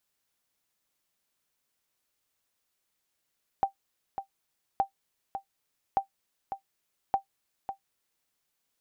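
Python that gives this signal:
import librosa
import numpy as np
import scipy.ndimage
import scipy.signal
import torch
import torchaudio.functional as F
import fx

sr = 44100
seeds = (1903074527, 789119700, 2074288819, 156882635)

y = fx.sonar_ping(sr, hz=784.0, decay_s=0.11, every_s=1.17, pings=4, echo_s=0.55, echo_db=-9.5, level_db=-15.5)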